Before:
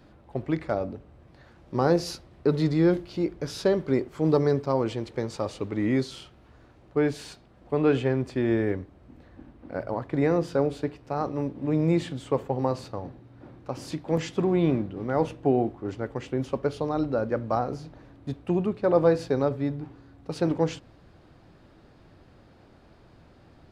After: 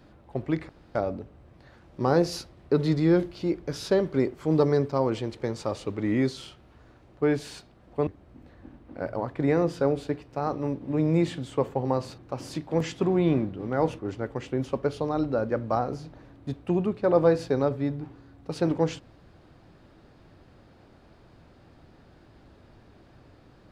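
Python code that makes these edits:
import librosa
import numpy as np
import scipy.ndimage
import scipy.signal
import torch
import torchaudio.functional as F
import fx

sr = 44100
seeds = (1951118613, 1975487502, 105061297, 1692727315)

y = fx.edit(x, sr, fx.insert_room_tone(at_s=0.69, length_s=0.26),
    fx.cut(start_s=7.81, length_s=1.0),
    fx.cut(start_s=12.92, length_s=0.63),
    fx.cut(start_s=15.36, length_s=0.43), tone=tone)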